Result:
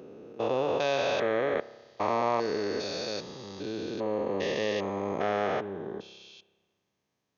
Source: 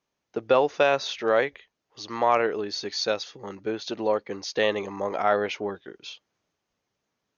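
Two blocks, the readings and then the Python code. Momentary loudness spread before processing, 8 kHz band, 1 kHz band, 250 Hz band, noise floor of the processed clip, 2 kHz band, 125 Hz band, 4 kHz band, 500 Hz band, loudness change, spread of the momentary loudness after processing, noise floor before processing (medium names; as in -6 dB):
14 LU, no reading, -4.5 dB, -1.0 dB, -81 dBFS, -5.5 dB, +1.5 dB, -5.5 dB, -4.0 dB, -4.5 dB, 13 LU, -82 dBFS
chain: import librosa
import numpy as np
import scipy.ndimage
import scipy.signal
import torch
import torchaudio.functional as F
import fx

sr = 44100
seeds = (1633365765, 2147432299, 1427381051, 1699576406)

y = fx.spec_steps(x, sr, hold_ms=400)
y = scipy.signal.sosfilt(scipy.signal.butter(2, 100.0, 'highpass', fs=sr, output='sos'), y)
y = fx.low_shelf(y, sr, hz=140.0, db=9.5)
y = fx.notch(y, sr, hz=1400.0, q=9.3)
y = fx.rev_spring(y, sr, rt60_s=1.4, pass_ms=(30,), chirp_ms=50, drr_db=16.5)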